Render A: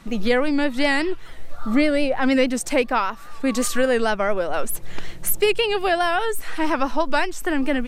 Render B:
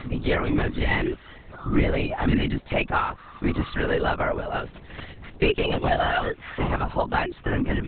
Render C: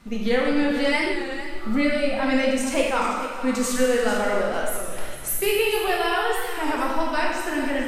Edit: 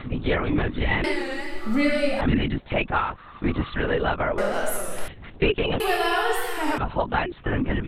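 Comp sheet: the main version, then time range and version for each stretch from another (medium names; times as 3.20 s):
B
1.04–2.21 s: from C
4.38–5.08 s: from C
5.80–6.78 s: from C
not used: A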